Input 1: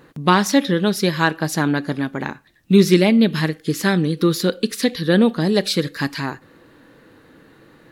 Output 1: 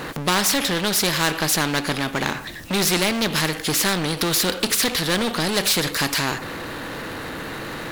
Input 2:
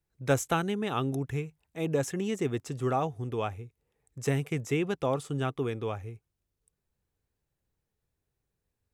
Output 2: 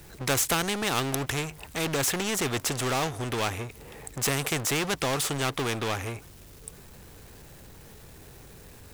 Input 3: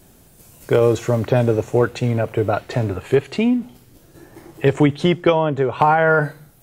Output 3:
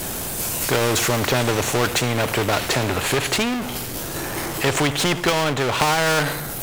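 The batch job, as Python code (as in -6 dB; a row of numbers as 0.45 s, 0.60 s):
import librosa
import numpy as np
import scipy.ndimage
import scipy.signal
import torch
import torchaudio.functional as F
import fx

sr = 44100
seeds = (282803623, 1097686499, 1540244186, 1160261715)

y = fx.power_curve(x, sr, exponent=0.7)
y = fx.spectral_comp(y, sr, ratio=2.0)
y = librosa.util.normalize(y) * 10.0 ** (-6 / 20.0)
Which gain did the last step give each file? -5.0 dB, +6.5 dB, -2.5 dB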